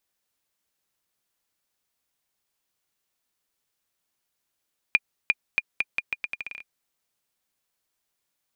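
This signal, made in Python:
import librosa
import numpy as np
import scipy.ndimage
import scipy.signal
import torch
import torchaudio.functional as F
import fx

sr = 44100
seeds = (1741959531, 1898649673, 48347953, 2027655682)

y = fx.bouncing_ball(sr, first_gap_s=0.35, ratio=0.8, hz=2420.0, decay_ms=38.0, level_db=-5.5)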